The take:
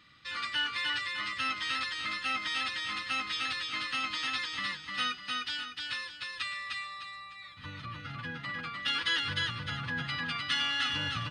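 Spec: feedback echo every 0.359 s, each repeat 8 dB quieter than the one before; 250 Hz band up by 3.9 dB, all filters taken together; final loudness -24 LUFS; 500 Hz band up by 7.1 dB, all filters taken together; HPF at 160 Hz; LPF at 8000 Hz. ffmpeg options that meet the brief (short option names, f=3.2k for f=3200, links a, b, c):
-af "highpass=160,lowpass=8k,equalizer=f=250:t=o:g=4,equalizer=f=500:t=o:g=7,aecho=1:1:359|718|1077|1436|1795:0.398|0.159|0.0637|0.0255|0.0102,volume=7.5dB"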